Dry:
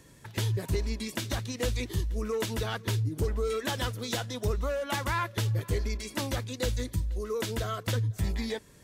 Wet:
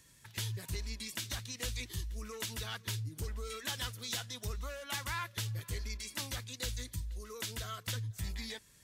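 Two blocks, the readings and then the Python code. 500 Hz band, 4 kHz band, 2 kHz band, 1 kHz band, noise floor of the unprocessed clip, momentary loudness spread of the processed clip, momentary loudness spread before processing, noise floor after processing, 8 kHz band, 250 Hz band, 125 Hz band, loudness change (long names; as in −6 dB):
−16.0 dB, −2.5 dB, −6.0 dB, −10.0 dB, −54 dBFS, 4 LU, 4 LU, −62 dBFS, −1.5 dB, −13.5 dB, −10.0 dB, −8.0 dB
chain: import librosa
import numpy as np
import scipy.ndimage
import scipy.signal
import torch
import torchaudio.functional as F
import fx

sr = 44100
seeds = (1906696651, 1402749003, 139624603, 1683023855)

y = fx.tone_stack(x, sr, knobs='5-5-5')
y = y * librosa.db_to_amplitude(4.5)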